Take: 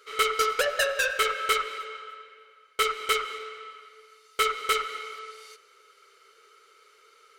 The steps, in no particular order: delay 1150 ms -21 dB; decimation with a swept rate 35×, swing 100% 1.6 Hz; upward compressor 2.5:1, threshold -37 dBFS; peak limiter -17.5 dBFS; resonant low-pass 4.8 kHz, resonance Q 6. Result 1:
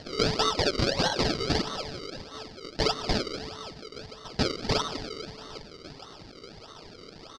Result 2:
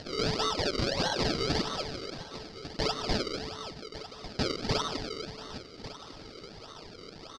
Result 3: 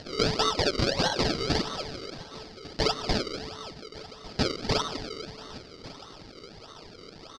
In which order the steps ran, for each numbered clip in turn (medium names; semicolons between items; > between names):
upward compressor > delay > decimation with a swept rate > peak limiter > resonant low-pass; decimation with a swept rate > delay > upward compressor > resonant low-pass > peak limiter; decimation with a swept rate > upward compressor > delay > peak limiter > resonant low-pass